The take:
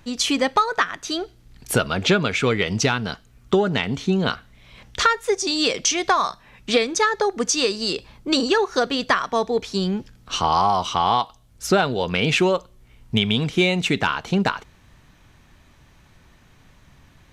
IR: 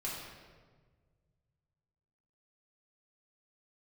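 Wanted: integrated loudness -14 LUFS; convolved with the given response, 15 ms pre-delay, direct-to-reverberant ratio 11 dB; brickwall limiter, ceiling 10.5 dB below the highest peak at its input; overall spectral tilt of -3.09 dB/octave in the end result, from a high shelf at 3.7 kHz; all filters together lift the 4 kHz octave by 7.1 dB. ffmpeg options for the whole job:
-filter_complex "[0:a]highshelf=f=3700:g=5.5,equalizer=f=4000:t=o:g=5.5,alimiter=limit=0.282:level=0:latency=1,asplit=2[s0][s1];[1:a]atrim=start_sample=2205,adelay=15[s2];[s1][s2]afir=irnorm=-1:irlink=0,volume=0.224[s3];[s0][s3]amix=inputs=2:normalize=0,volume=2.51"

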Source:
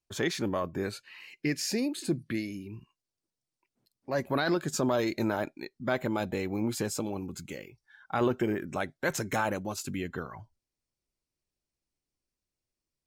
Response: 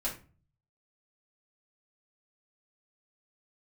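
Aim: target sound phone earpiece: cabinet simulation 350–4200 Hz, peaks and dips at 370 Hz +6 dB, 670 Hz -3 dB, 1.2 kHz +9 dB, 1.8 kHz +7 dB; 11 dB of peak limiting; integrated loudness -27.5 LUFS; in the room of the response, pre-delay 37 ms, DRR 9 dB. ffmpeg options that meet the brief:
-filter_complex "[0:a]alimiter=level_in=1.68:limit=0.0631:level=0:latency=1,volume=0.596,asplit=2[s0][s1];[1:a]atrim=start_sample=2205,adelay=37[s2];[s1][s2]afir=irnorm=-1:irlink=0,volume=0.237[s3];[s0][s3]amix=inputs=2:normalize=0,highpass=350,equalizer=f=370:t=q:w=4:g=6,equalizer=f=670:t=q:w=4:g=-3,equalizer=f=1200:t=q:w=4:g=9,equalizer=f=1800:t=q:w=4:g=7,lowpass=f=4200:w=0.5412,lowpass=f=4200:w=1.3066,volume=3.55"

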